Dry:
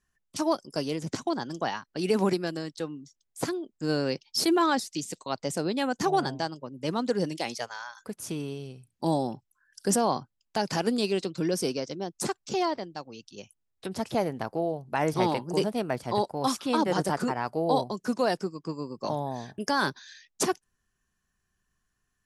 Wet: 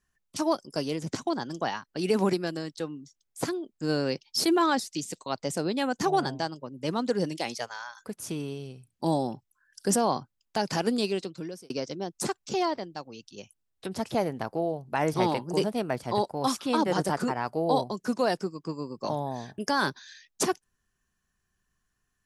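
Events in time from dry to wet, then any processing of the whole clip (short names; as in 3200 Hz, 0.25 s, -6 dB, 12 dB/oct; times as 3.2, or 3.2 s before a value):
11–11.7 fade out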